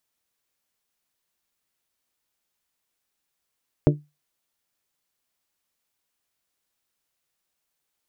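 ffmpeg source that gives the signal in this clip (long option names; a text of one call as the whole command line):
ffmpeg -f lavfi -i "aevalsrc='0.266*pow(10,-3*t/0.24)*sin(2*PI*148*t)+0.211*pow(10,-3*t/0.148)*sin(2*PI*296*t)+0.168*pow(10,-3*t/0.13)*sin(2*PI*355.2*t)+0.133*pow(10,-3*t/0.111)*sin(2*PI*444*t)+0.106*pow(10,-3*t/0.091)*sin(2*PI*592*t)':duration=0.89:sample_rate=44100" out.wav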